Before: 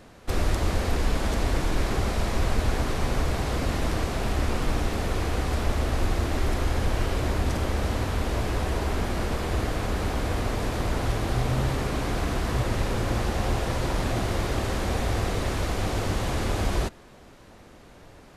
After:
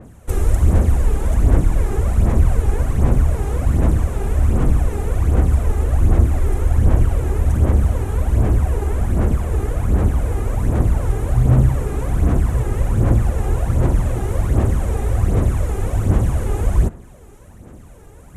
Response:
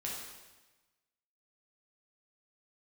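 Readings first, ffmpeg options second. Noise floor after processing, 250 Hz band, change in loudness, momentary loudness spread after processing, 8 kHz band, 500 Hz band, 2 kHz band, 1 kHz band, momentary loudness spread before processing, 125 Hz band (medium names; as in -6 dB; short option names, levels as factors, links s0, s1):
-41 dBFS, +6.0 dB, +9.0 dB, 5 LU, +1.0 dB, +3.5 dB, -3.0 dB, 0.0 dB, 2 LU, +11.5 dB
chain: -filter_complex "[0:a]highpass=f=120:p=1,aphaser=in_gain=1:out_gain=1:delay=2.5:decay=0.56:speed=1.3:type=sinusoidal,areverse,acompressor=mode=upward:threshold=0.00708:ratio=2.5,areverse,aemphasis=mode=reproduction:type=riaa,aexciter=amount=12.8:drive=6.6:freq=6900,asplit=2[s0][s1];[1:a]atrim=start_sample=2205[s2];[s1][s2]afir=irnorm=-1:irlink=0,volume=0.0668[s3];[s0][s3]amix=inputs=2:normalize=0,adynamicequalizer=threshold=0.00631:dfrequency=3000:dqfactor=0.7:tfrequency=3000:tqfactor=0.7:attack=5:release=100:ratio=0.375:range=2.5:mode=cutabove:tftype=highshelf,volume=0.75"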